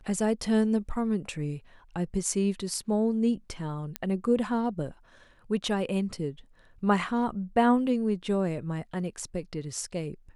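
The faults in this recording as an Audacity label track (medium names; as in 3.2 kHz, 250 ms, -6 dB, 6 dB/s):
3.960000	3.960000	pop -14 dBFS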